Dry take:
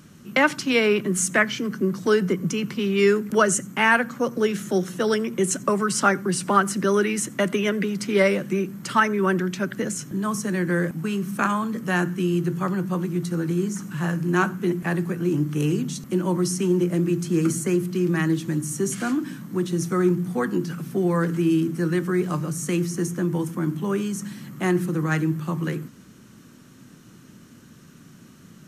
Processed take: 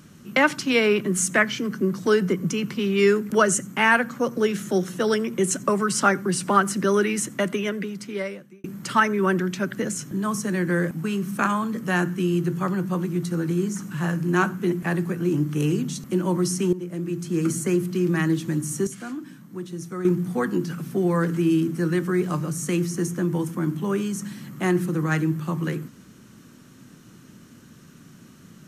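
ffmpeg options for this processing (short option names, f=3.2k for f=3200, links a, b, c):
-filter_complex "[0:a]asplit=5[a][b][c][d][e];[a]atrim=end=8.64,asetpts=PTS-STARTPTS,afade=t=out:st=7.19:d=1.45[f];[b]atrim=start=8.64:end=16.73,asetpts=PTS-STARTPTS,afade=t=in:d=0.004:c=hsin,afade=t=out:st=8.086:d=0.004:c=hsin:silence=0.199526[g];[c]atrim=start=16.73:end=18.872,asetpts=PTS-STARTPTS,afade=t=in:d=0.93:silence=0.199526[h];[d]atrim=start=18.868:end=20.052,asetpts=PTS-STARTPTS,volume=-9dB[i];[e]atrim=start=20.048[j];[f][g][h]concat=n=3:v=0:a=1[k];[k][i]acrossfade=d=0.004:c1=hsin:c2=hsin[l];[l][j]acrossfade=d=0.004:c1=hsin:c2=hsin"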